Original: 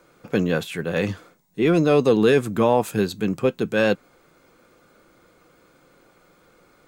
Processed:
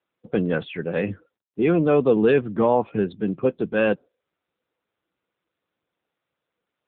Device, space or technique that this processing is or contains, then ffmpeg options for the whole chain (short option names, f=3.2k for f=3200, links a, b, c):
mobile call with aggressive noise cancelling: -af "highpass=f=120:p=1,afftdn=nr=35:nf=-37" -ar 8000 -c:a libopencore_amrnb -b:a 7950